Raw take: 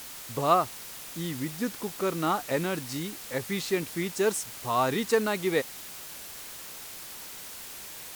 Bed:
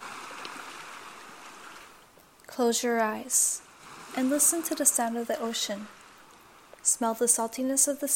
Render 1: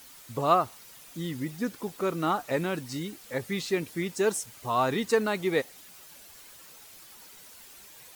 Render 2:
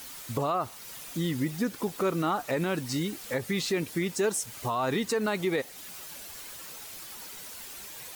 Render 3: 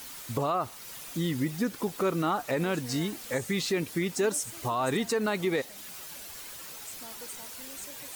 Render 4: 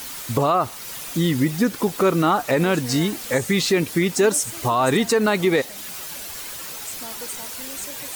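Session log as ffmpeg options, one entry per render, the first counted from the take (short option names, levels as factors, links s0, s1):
-af "afftdn=nr=10:nf=-43"
-filter_complex "[0:a]asplit=2[s0][s1];[s1]acompressor=threshold=0.0158:ratio=6,volume=1.26[s2];[s0][s2]amix=inputs=2:normalize=0,alimiter=limit=0.112:level=0:latency=1:release=65"
-filter_complex "[1:a]volume=0.0794[s0];[0:a][s0]amix=inputs=2:normalize=0"
-af "volume=2.99"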